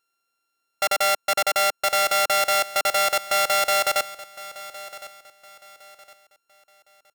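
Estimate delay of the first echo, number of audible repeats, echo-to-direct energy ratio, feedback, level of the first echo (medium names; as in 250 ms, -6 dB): 1061 ms, 2, -16.5 dB, 32%, -17.0 dB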